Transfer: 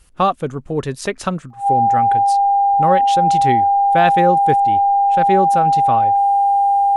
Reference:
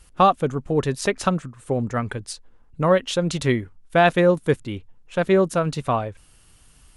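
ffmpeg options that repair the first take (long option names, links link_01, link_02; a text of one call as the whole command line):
ffmpeg -i in.wav -af "bandreject=frequency=800:width=30" out.wav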